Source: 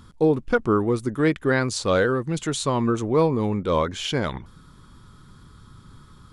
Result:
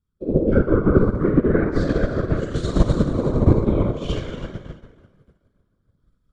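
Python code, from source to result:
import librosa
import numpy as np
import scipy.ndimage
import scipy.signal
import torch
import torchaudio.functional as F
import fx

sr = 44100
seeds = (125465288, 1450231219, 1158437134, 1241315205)

p1 = fx.spec_steps(x, sr, hold_ms=50)
p2 = fx.rotary(p1, sr, hz=1.1)
p3 = fx.env_lowpass_down(p2, sr, base_hz=1100.0, full_db=-18.0)
p4 = fx.peak_eq(p3, sr, hz=780.0, db=-7.0, octaves=0.65)
p5 = p4 + fx.echo_feedback(p4, sr, ms=310, feedback_pct=43, wet_db=-9.5, dry=0)
p6 = fx.rev_plate(p5, sr, seeds[0], rt60_s=3.5, hf_ratio=0.45, predelay_ms=0, drr_db=-8.5)
p7 = fx.whisperise(p6, sr, seeds[1])
p8 = fx.low_shelf(p7, sr, hz=110.0, db=10.5)
y = fx.upward_expand(p8, sr, threshold_db=-31.0, expansion=2.5)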